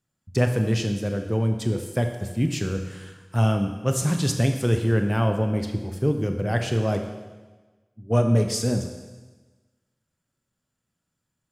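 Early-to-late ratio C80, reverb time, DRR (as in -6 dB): 9.0 dB, 1.3 s, 5.0 dB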